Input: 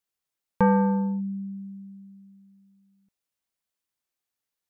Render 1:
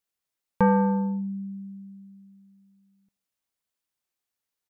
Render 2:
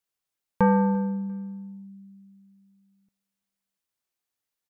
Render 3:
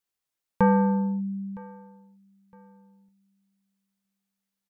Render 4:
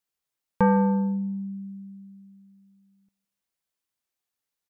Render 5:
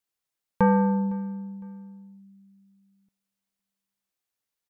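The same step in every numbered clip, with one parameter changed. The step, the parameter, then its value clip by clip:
feedback echo, time: 79, 345, 962, 163, 508 ms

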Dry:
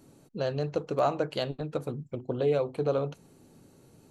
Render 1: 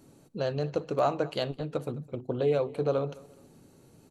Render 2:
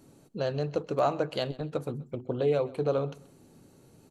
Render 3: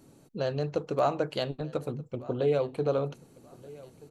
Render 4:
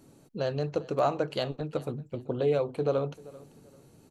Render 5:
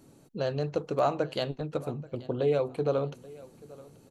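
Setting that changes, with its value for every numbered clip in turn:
feedback echo, time: 0.211, 0.13, 1.229, 0.39, 0.832 s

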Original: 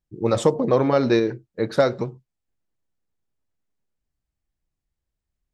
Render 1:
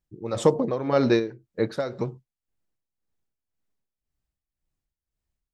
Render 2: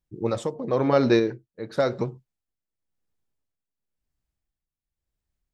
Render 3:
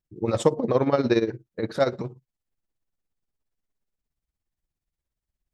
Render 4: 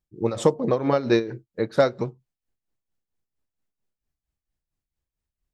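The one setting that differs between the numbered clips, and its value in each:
tremolo, rate: 1.9, 0.95, 17, 4.4 Hz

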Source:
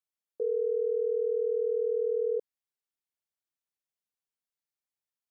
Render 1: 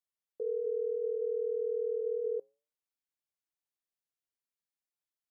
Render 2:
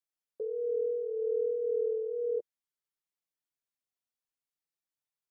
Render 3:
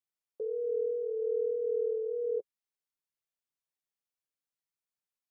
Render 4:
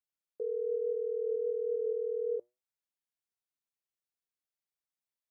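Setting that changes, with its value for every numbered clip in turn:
flange, regen: -87, +5, -16, +81%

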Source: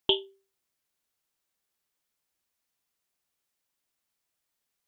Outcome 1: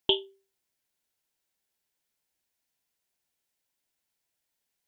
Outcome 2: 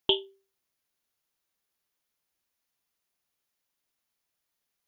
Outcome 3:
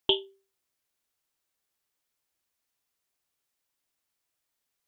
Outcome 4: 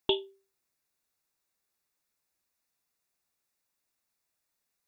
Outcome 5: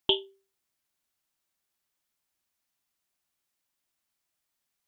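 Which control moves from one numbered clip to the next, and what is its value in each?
notch, frequency: 1200, 8000, 190, 3100, 470 Hz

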